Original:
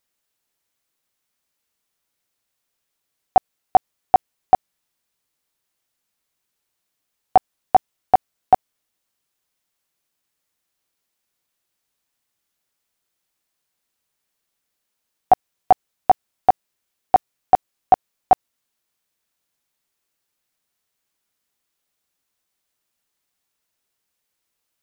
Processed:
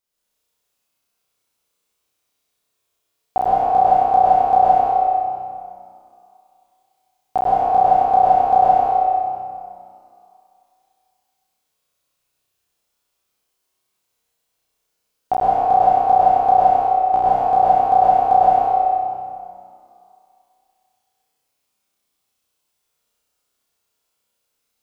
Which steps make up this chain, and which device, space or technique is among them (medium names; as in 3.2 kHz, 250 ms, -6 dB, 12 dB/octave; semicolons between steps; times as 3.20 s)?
peaking EQ 1.8 kHz -6 dB 0.41 oct; tunnel (flutter echo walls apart 5.5 m, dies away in 1.1 s; reverberation RT60 2.4 s, pre-delay 95 ms, DRR -7.5 dB); trim -7.5 dB